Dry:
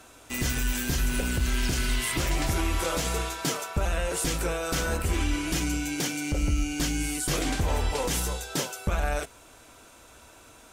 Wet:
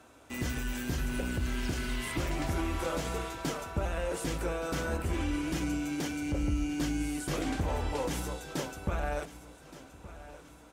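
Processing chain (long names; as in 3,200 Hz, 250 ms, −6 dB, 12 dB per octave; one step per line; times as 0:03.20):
high-pass filter 60 Hz
high-shelf EQ 2,400 Hz −9.5 dB
repeating echo 1,171 ms, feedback 42%, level −16 dB
on a send at −16 dB: convolution reverb, pre-delay 3 ms
on the sum: level −3 dB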